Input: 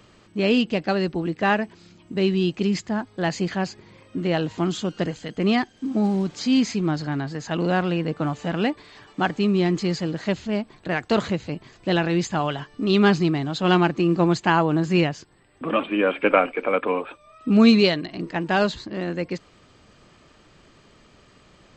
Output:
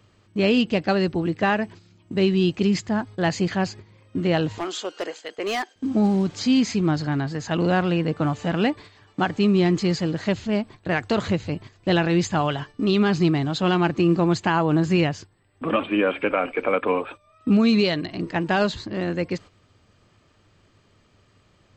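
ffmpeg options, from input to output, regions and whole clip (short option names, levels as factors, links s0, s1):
-filter_complex "[0:a]asettb=1/sr,asplit=3[s0][s1][s2];[s0]atrim=end=4.584[s3];[s1]atrim=start=4.58:end=5.76,asetpts=PTS-STARTPTS,afade=t=in:d=0.004:c=qsin,afade=t=out:st=1.176:d=0.004:c=qsin,highpass=f=400:w=0.5412,highpass=f=400:w=1.3066,asoftclip=type=hard:threshold=0.075[s4];[s2]atrim=start=5.756[s5];[s3][s4]acrossfade=d=0.004:c1=hsin:c2=qsin[s6];[s6][s5]acrossfade=d=0.004:c1=qsin:c2=hsin,agate=range=0.355:threshold=0.00891:ratio=16:detection=peak,equalizer=f=98:t=o:w=0.36:g=13.5,alimiter=limit=0.251:level=0:latency=1:release=141,volume=1.19"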